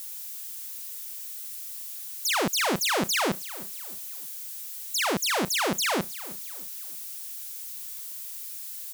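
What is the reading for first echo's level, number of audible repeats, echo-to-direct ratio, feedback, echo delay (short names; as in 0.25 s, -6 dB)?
-18.0 dB, 3, -17.5 dB, 39%, 0.314 s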